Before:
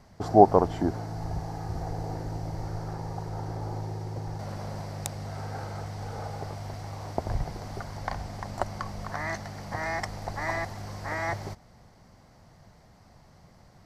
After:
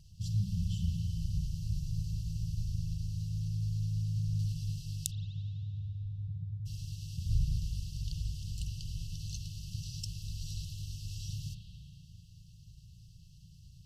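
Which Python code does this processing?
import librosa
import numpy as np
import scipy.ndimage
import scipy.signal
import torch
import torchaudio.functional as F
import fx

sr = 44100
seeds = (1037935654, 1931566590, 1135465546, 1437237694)

y = fx.spec_expand(x, sr, power=2.5, at=(5.1, 6.65), fade=0.02)
y = fx.brickwall_bandstop(y, sr, low_hz=180.0, high_hz=2600.0)
y = fx.filter_lfo_notch(y, sr, shape='sine', hz=9.5, low_hz=360.0, high_hz=4500.0, q=2.7)
y = fx.rev_spring(y, sr, rt60_s=2.7, pass_ms=(36, 57), chirp_ms=35, drr_db=0.5)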